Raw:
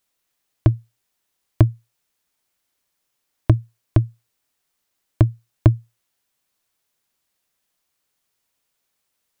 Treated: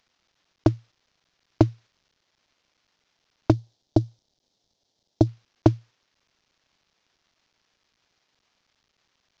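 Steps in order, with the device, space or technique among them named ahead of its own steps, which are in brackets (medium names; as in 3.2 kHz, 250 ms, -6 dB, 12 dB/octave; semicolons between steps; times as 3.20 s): early wireless headset (high-pass 240 Hz 12 dB/octave; CVSD coder 32 kbps); 3.52–5.27 s: high-order bell 1.7 kHz -13.5 dB; trim +6 dB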